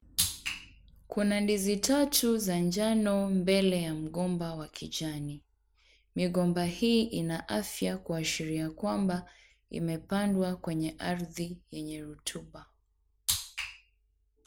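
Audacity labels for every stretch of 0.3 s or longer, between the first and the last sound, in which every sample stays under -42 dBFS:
0.640000	1.100000	silence
5.370000	6.160000	silence
9.240000	9.720000	silence
12.620000	13.290000	silence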